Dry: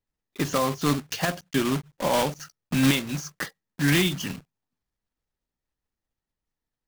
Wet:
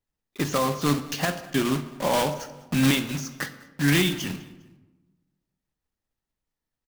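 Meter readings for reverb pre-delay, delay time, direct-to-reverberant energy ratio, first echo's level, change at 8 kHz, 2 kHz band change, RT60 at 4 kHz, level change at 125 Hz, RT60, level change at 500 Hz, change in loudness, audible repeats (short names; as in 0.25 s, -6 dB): 22 ms, 0.202 s, 10.0 dB, -22.0 dB, 0.0 dB, +0.5 dB, 0.85 s, +0.5 dB, 1.1 s, +0.5 dB, +0.5 dB, 2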